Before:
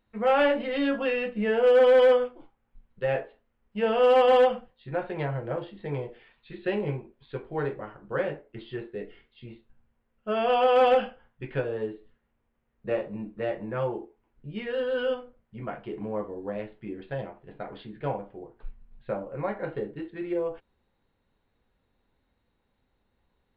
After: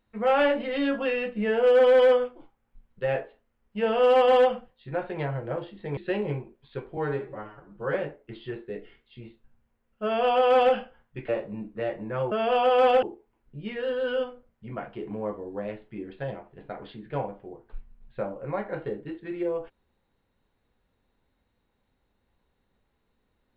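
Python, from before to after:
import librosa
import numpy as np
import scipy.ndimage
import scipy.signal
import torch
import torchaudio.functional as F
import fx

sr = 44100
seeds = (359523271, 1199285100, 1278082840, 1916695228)

y = fx.edit(x, sr, fx.cut(start_s=5.97, length_s=0.58),
    fx.stretch_span(start_s=7.55, length_s=0.65, factor=1.5),
    fx.duplicate(start_s=10.29, length_s=0.71, to_s=13.93),
    fx.cut(start_s=11.54, length_s=1.36), tone=tone)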